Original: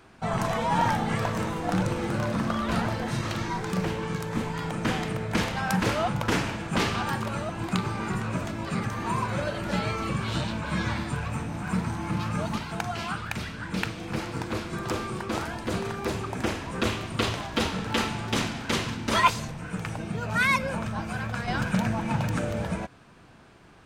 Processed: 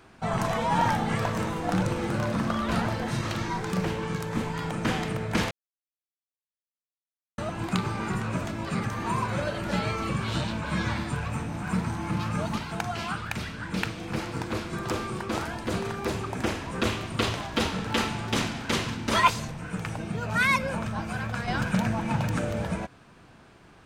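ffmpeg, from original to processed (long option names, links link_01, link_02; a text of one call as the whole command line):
ffmpeg -i in.wav -filter_complex "[0:a]asplit=3[link_01][link_02][link_03];[link_01]atrim=end=5.51,asetpts=PTS-STARTPTS,afade=type=out:start_time=5.506:duration=0.004:curve=hsin[link_04];[link_02]atrim=start=5.51:end=7.38,asetpts=PTS-STARTPTS,volume=0[link_05];[link_03]atrim=start=7.38,asetpts=PTS-STARTPTS,afade=type=in:duration=0.004:curve=hsin[link_06];[link_04][link_05][link_06]concat=n=3:v=0:a=1" out.wav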